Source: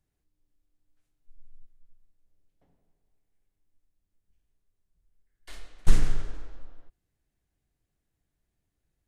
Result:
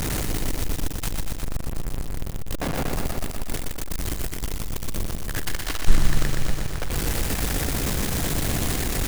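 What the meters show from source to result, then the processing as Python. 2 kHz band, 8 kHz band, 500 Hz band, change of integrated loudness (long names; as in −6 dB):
+18.5 dB, can't be measured, +19.0 dB, +4.5 dB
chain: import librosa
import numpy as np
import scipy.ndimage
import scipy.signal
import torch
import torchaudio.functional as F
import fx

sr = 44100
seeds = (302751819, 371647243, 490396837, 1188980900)

y = x + 0.5 * 10.0 ** (-20.0 / 20.0) * np.sign(x)
y = fx.echo_crushed(y, sr, ms=121, feedback_pct=80, bits=6, wet_db=-3.0)
y = y * 10.0 ** (1.0 / 20.0)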